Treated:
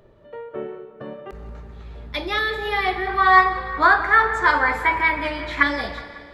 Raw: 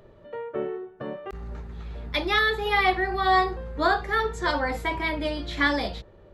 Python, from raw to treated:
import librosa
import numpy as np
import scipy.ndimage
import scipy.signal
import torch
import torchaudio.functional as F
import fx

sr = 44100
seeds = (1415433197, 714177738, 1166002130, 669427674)

y = fx.band_shelf(x, sr, hz=1500.0, db=11.5, octaves=1.7, at=(3.07, 5.63))
y = fx.echo_filtered(y, sr, ms=183, feedback_pct=55, hz=4600.0, wet_db=-14.0)
y = fx.rev_schroeder(y, sr, rt60_s=2.1, comb_ms=28, drr_db=11.5)
y = y * 10.0 ** (-1.0 / 20.0)